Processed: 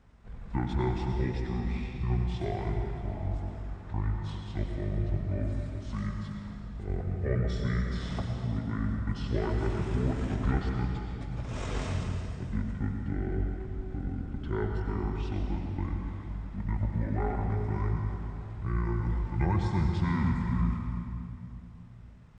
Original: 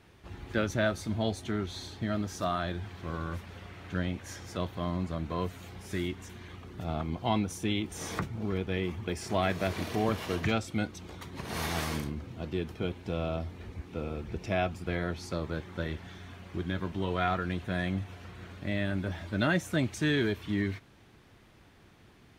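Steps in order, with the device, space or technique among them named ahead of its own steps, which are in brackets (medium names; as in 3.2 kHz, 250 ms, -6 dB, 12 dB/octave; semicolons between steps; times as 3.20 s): 7.94–8.79 s: high-pass 110 Hz 24 dB/octave; monster voice (pitch shift -9.5 st; bass shelf 180 Hz +8 dB; reverberation RT60 2.5 s, pre-delay 83 ms, DRR 2 dB); trim -5 dB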